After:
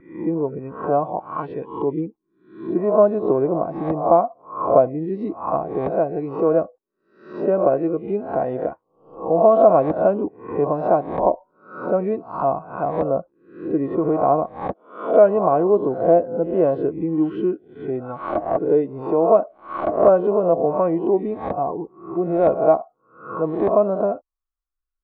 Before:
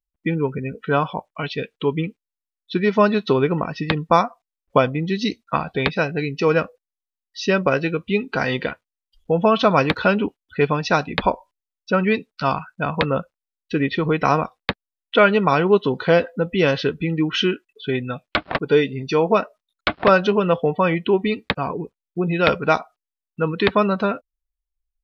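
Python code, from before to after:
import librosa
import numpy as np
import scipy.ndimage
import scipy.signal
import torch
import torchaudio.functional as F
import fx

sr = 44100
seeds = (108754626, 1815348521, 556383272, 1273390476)

y = fx.spec_swells(x, sr, rise_s=0.52)
y = fx.small_body(y, sr, hz=(330.0, 1100.0), ring_ms=45, db=9)
y = fx.vibrato(y, sr, rate_hz=0.33, depth_cents=9.9)
y = fx.envelope_lowpass(y, sr, base_hz=670.0, top_hz=1400.0, q=5.0, full_db=-15.5, direction='down')
y = y * librosa.db_to_amplitude(-8.0)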